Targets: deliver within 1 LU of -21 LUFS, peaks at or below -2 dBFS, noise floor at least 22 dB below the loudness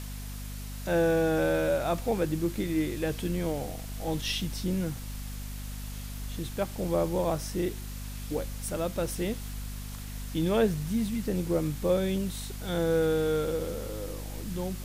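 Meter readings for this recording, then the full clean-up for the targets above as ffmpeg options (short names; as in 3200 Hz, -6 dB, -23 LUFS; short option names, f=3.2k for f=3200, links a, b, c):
hum 50 Hz; harmonics up to 250 Hz; hum level -36 dBFS; noise floor -39 dBFS; noise floor target -53 dBFS; loudness -30.5 LUFS; peak -14.0 dBFS; loudness target -21.0 LUFS
-> -af "bandreject=f=50:t=h:w=4,bandreject=f=100:t=h:w=4,bandreject=f=150:t=h:w=4,bandreject=f=200:t=h:w=4,bandreject=f=250:t=h:w=4"
-af "afftdn=nr=14:nf=-39"
-af "volume=9.5dB"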